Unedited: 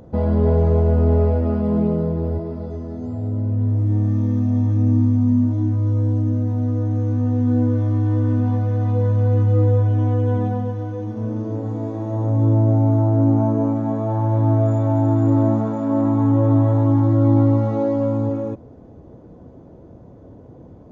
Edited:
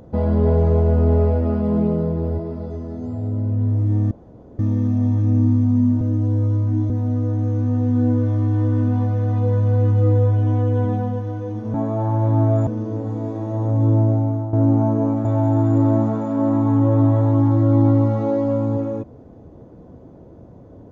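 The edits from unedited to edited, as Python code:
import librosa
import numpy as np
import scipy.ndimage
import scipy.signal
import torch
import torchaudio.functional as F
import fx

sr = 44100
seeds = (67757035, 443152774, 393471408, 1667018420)

y = fx.edit(x, sr, fx.insert_room_tone(at_s=4.11, length_s=0.48),
    fx.reverse_span(start_s=5.53, length_s=0.89),
    fx.fade_out_to(start_s=12.6, length_s=0.52, floor_db=-11.5),
    fx.move(start_s=13.84, length_s=0.93, to_s=11.26), tone=tone)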